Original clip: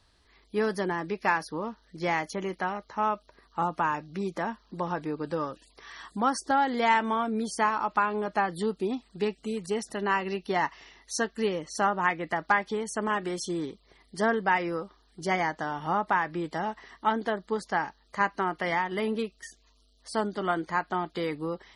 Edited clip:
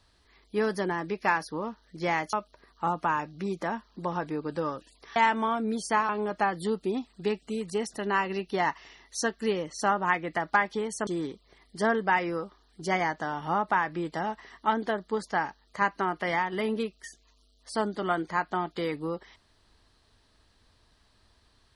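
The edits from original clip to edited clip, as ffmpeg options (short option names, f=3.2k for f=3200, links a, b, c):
-filter_complex "[0:a]asplit=5[a][b][c][d][e];[a]atrim=end=2.332[f];[b]atrim=start=3.078:end=5.912[g];[c]atrim=start=6.838:end=7.772[h];[d]atrim=start=8.048:end=13.032[i];[e]atrim=start=13.458[j];[f][g]acrossfade=d=0.004:c1=hsin:c2=hsin[k];[k][h]acrossfade=d=0.004:c1=hsin:c2=hsin[l];[l][i]acrossfade=d=0.004:c1=hsin:c2=hsin[m];[m][j]acrossfade=d=0.004:c1=hsin:c2=hsin"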